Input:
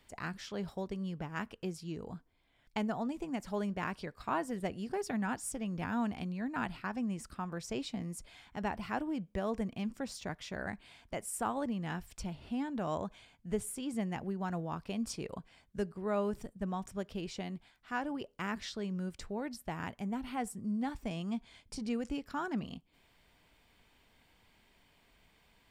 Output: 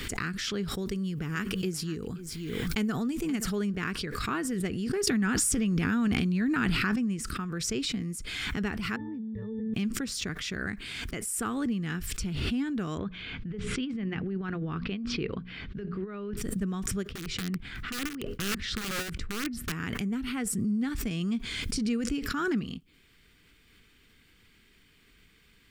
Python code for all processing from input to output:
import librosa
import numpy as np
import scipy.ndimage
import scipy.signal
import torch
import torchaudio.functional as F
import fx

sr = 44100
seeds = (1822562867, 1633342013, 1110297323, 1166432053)

y = fx.chain(x, sr, fx.high_shelf(hz=8300.0, db=10.5),
    fx.echo_single(ms=526, db=-18.5), at=(0.82, 3.5))
y = fx.chain(y, sr, fx.transient(attack_db=0, sustain_db=10),
    fx.env_flatten(amount_pct=70), at=(5.07, 6.96))
y = fx.chain(y, sr, fx.high_shelf(hz=3000.0, db=-8.5),
    fx.octave_resonator(note='A', decay_s=0.56),
    fx.env_flatten(amount_pct=100), at=(8.96, 9.74))
y = fx.chain(y, sr, fx.lowpass(hz=3700.0, slope=24),
    fx.hum_notches(base_hz=60, count=4),
    fx.over_compress(threshold_db=-39.0, ratio=-0.5), at=(12.98, 16.37))
y = fx.chain(y, sr, fx.bass_treble(bass_db=7, treble_db=-11),
    fx.overflow_wrap(gain_db=29.5),
    fx.tremolo_db(hz=4.2, depth_db=24), at=(17.09, 19.72))
y = fx.band_shelf(y, sr, hz=740.0, db=-14.5, octaves=1.1)
y = fx.pre_swell(y, sr, db_per_s=24.0)
y = F.gain(torch.from_numpy(y), 6.0).numpy()